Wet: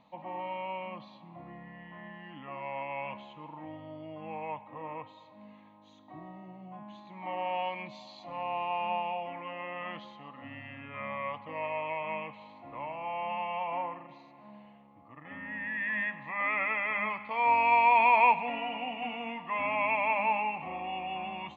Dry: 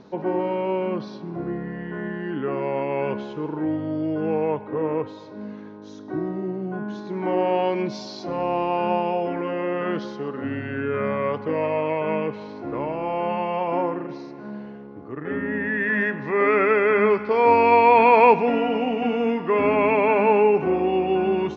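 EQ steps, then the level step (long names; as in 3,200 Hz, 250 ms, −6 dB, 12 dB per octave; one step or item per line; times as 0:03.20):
low-shelf EQ 420 Hz −11.5 dB
phaser with its sweep stopped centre 1,500 Hz, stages 6
dynamic equaliser 1,900 Hz, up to +3 dB, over −40 dBFS, Q 0.97
−5.0 dB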